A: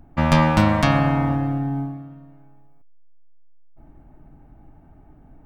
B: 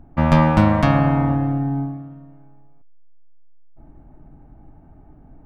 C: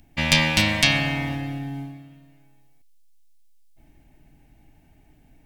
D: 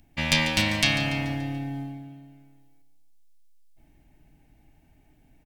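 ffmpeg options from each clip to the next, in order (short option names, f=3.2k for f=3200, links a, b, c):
-af "highshelf=f=2.4k:g=-11.5,volume=2.5dB"
-af "aexciter=amount=15.8:drive=6.2:freq=2k,volume=-9.5dB"
-af "aecho=1:1:144|288|432|576|720:0.224|0.116|0.0605|0.0315|0.0164,volume=-4dB"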